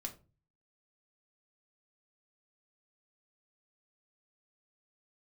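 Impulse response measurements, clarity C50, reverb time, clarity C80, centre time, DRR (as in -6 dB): 14.0 dB, 0.35 s, 19.5 dB, 10 ms, 2.0 dB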